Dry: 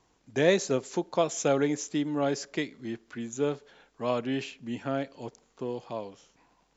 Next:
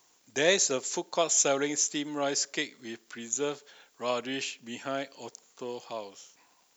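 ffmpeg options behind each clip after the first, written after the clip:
-af "aemphasis=mode=production:type=riaa"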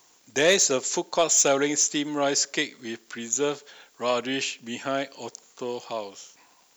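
-af "asoftclip=type=tanh:threshold=0.158,volume=2"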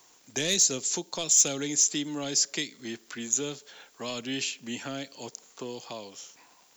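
-filter_complex "[0:a]acrossover=split=270|3000[s0][s1][s2];[s1]acompressor=threshold=0.01:ratio=4[s3];[s0][s3][s2]amix=inputs=3:normalize=0"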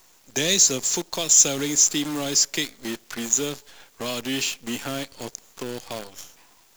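-af "acrusher=bits=7:dc=4:mix=0:aa=0.000001,volume=1.88"

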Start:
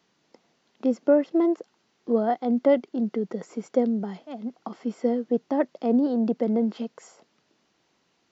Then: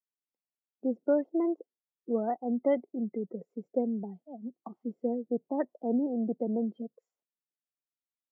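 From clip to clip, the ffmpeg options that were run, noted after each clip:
-af "afftdn=nr=35:nf=-32,volume=0.447"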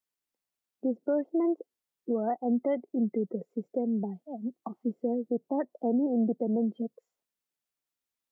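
-af "alimiter=level_in=1.19:limit=0.0631:level=0:latency=1:release=225,volume=0.841,volume=1.88"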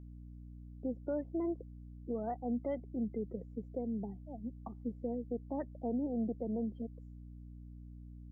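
-af "aeval=exprs='val(0)+0.01*(sin(2*PI*60*n/s)+sin(2*PI*2*60*n/s)/2+sin(2*PI*3*60*n/s)/3+sin(2*PI*4*60*n/s)/4+sin(2*PI*5*60*n/s)/5)':c=same,volume=0.376"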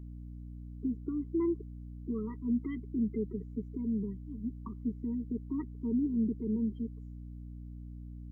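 -af "afftfilt=real='re*eq(mod(floor(b*sr/1024/470),2),0)':imag='im*eq(mod(floor(b*sr/1024/470),2),0)':win_size=1024:overlap=0.75,volume=1.88"

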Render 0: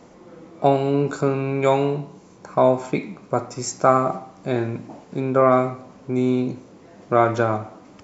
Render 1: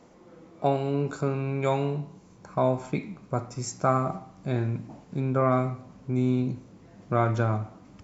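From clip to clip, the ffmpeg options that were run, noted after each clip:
-af "asubboost=boost=3.5:cutoff=200,volume=0.447"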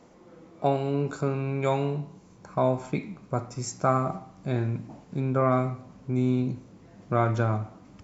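-af anull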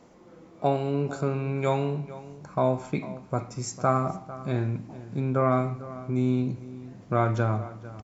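-filter_complex "[0:a]asplit=2[s0][s1];[s1]adelay=449,volume=0.158,highshelf=f=4000:g=-10.1[s2];[s0][s2]amix=inputs=2:normalize=0"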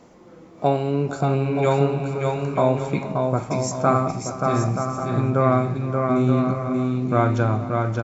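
-af "aecho=1:1:580|928|1137|1262|1337:0.631|0.398|0.251|0.158|0.1,volume=1.68"

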